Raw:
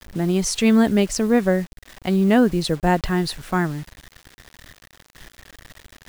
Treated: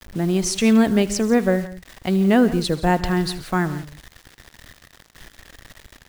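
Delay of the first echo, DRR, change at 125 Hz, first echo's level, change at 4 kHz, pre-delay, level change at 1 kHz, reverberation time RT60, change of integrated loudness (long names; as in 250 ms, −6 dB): 77 ms, no reverb audible, 0.0 dB, −19.0 dB, 0.0 dB, no reverb audible, 0.0 dB, no reverb audible, 0.0 dB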